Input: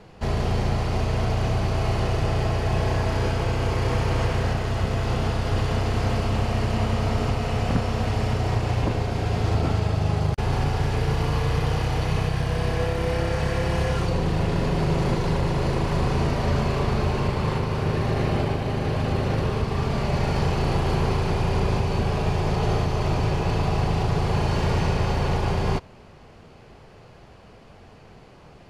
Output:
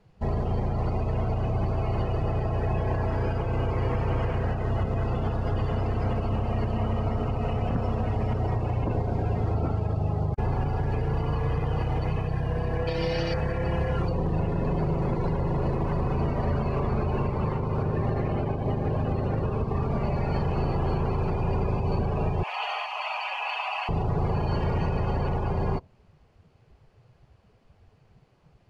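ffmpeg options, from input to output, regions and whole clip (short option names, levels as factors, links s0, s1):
-filter_complex "[0:a]asettb=1/sr,asplit=3[s0][s1][s2];[s0]atrim=end=12.874[s3];[s1]atrim=start=12.87:end=13.34,asetpts=PTS-STARTPTS,afade=t=in:d=0.004:c=qsin,afade=t=out:st=0.466:d=0.004:c=qsin,equalizer=f=4700:w=0.79:g=10,aecho=1:1:6.3:0.5,atrim=end_sample=20727[s4];[s2]atrim=start=13.336[s5];[s3][s4]acrossfade=d=0.004:c1=hsin:c2=qsin[s6];[s6][s5]acrossfade=d=0.004:c1=qsin:c2=hsin,asettb=1/sr,asplit=3[s7][s8][s9];[s7]atrim=end=22.434[s10];[s8]atrim=start=22.43:end=23.89,asetpts=PTS-STARTPTS,afade=t=in:d=0.004:c=qsin,afade=t=out:st=1.456:d=0.004:c=qsin,highpass=f=760:w=0.5412,highpass=f=760:w=1.3066,equalizer=f=2700:w=2:g=8[s11];[s9]atrim=start=23.886[s12];[s10][s11]acrossfade=d=0.004:c1=hsin:c2=qsin[s13];[s13][s12]acrossfade=d=0.004:c1=qsin:c2=hsin,afftdn=nr=18:nf=-32,alimiter=limit=0.1:level=0:latency=1:release=137,volume=1.26"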